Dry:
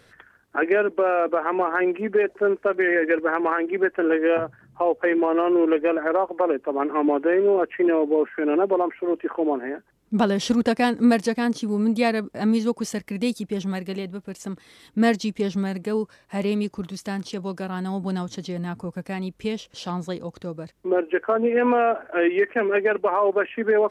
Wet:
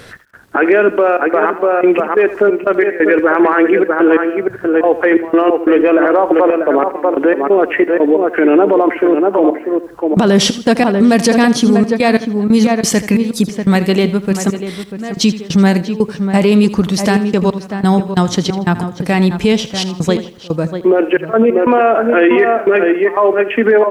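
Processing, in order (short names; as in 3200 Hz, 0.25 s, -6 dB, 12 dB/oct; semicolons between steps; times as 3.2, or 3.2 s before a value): step gate "x.xxxxx.x..x.xx." 90 bpm -24 dB; outdoor echo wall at 110 m, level -10 dB; maximiser +20 dB; lo-fi delay 81 ms, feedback 35%, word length 7-bit, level -14.5 dB; gain -2 dB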